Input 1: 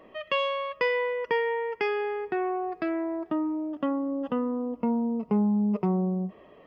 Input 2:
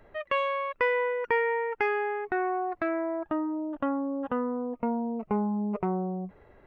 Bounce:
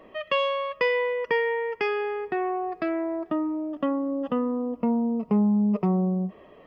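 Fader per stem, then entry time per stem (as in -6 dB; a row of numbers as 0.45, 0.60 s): +2.0, -12.5 dB; 0.00, 0.00 s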